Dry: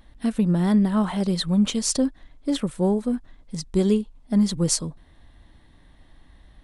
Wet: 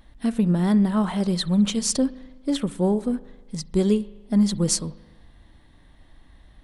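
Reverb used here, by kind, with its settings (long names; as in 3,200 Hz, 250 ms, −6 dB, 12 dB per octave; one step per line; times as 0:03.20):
spring reverb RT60 1.2 s, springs 39 ms, chirp 30 ms, DRR 17 dB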